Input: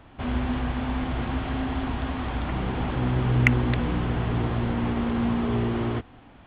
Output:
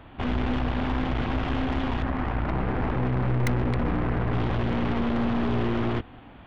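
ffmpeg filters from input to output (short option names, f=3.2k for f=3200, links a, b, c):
-filter_complex "[0:a]asettb=1/sr,asplit=3[a][b][c];[a]atrim=end=2.024[d];[b]atrim=start=2.02:end=4.33,asetpts=PTS-STARTPTS,afade=t=in:d=0.004:c=qsin,afade=t=out:st=2.306:d=0.004:c=qsin,lowpass=f=2.2k:w=0.5412,lowpass=f=2.2k:w=1.3066[e];[c]atrim=start=4.326[f];[d][e]acrossfade=d=0.004:c1=hsin:c2=qsin[g];[g][f]acrossfade=d=0.004:c1=qsin:c2=hsin,aeval=exprs='(tanh(28.2*val(0)+0.65)-tanh(0.65))/28.2':c=same,volume=6.5dB"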